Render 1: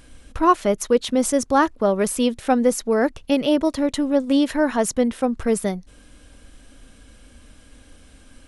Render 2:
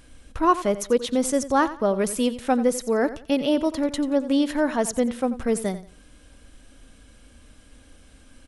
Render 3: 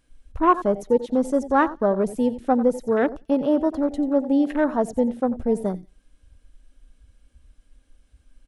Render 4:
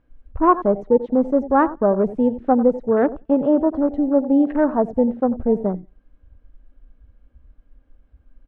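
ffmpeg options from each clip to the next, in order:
-af "aecho=1:1:89|178|267:0.188|0.049|0.0127,volume=-3dB"
-af "afwtdn=0.0355,volume=1.5dB"
-af "lowpass=1.3k,volume=3.5dB"

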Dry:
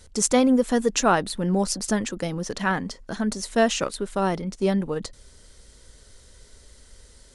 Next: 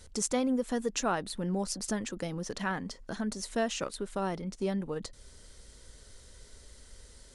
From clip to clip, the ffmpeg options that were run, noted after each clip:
-af "acompressor=threshold=-38dB:ratio=1.5,volume=-2.5dB"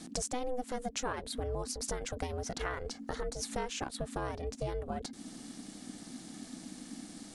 -af "acompressor=threshold=-39dB:ratio=4,aeval=exprs='val(0)*sin(2*PI*250*n/s)':c=same,volume=7.5dB"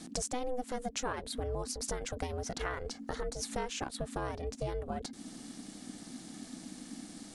-af anull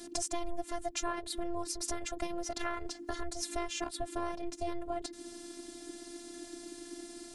-af "afftfilt=real='hypot(re,im)*cos(PI*b)':imag='0':win_size=512:overlap=0.75,volume=4.5dB"

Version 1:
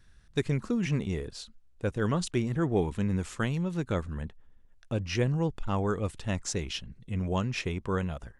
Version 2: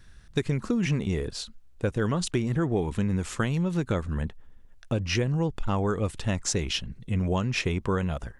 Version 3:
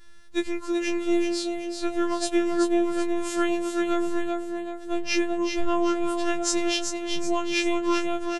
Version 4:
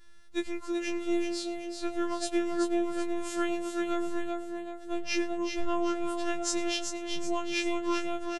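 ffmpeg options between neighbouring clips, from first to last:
-af "acompressor=threshold=-29dB:ratio=6,volume=7dB"
-filter_complex "[0:a]asplit=6[a][b][c][d][e][f];[b]adelay=382,afreqshift=110,volume=-6dB[g];[c]adelay=764,afreqshift=220,volume=-13.1dB[h];[d]adelay=1146,afreqshift=330,volume=-20.3dB[i];[e]adelay=1528,afreqshift=440,volume=-27.4dB[j];[f]adelay=1910,afreqshift=550,volume=-34.5dB[k];[a][g][h][i][j][k]amix=inputs=6:normalize=0,afftfilt=real='hypot(re,im)*cos(PI*b)':imag='0':win_size=512:overlap=0.75,afftfilt=real='re*2.83*eq(mod(b,8),0)':imag='im*2.83*eq(mod(b,8),0)':win_size=2048:overlap=0.75"
-af "aecho=1:1:106:0.0841,volume=-5.5dB"

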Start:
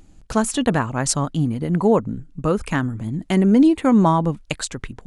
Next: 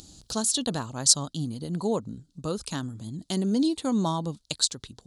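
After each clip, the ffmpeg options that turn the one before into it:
-af "highpass=58,highshelf=f=3k:t=q:w=3:g=11,acompressor=mode=upward:threshold=-28dB:ratio=2.5,volume=-10.5dB"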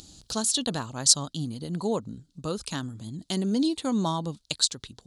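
-af "equalizer=f=2.6k:w=0.67:g=3.5,volume=-1dB"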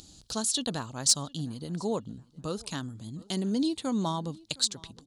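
-filter_complex "[0:a]asplit=2[a][b];[b]adelay=712,lowpass=f=4.2k:p=1,volume=-24dB,asplit=2[c][d];[d]adelay=712,lowpass=f=4.2k:p=1,volume=0.33[e];[a][c][e]amix=inputs=3:normalize=0,acontrast=28,volume=-8dB"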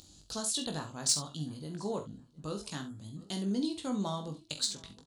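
-filter_complex "[0:a]asplit=2[a][b];[b]asoftclip=type=tanh:threshold=-18dB,volume=-8dB[c];[a][c]amix=inputs=2:normalize=0,asplit=2[d][e];[e]adelay=20,volume=-6dB[f];[d][f]amix=inputs=2:normalize=0,aecho=1:1:45|68:0.299|0.224,volume=-8.5dB"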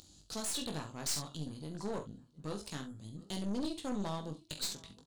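-af "aeval=exprs='(tanh(44.7*val(0)+0.7)-tanh(0.7))/44.7':c=same,volume=1dB"

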